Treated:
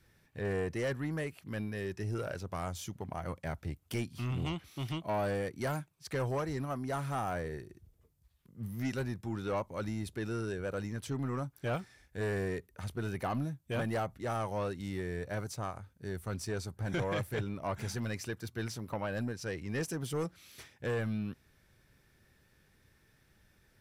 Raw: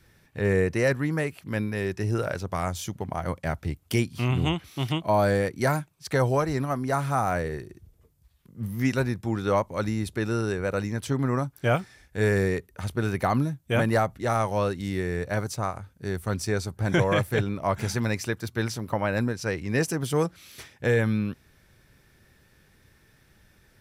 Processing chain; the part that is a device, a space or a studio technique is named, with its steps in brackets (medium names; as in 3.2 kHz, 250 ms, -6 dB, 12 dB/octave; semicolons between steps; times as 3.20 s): saturation between pre-emphasis and de-emphasis (treble shelf 6 kHz +10 dB; saturation -20 dBFS, distortion -13 dB; treble shelf 6 kHz -10 dB); trim -7.5 dB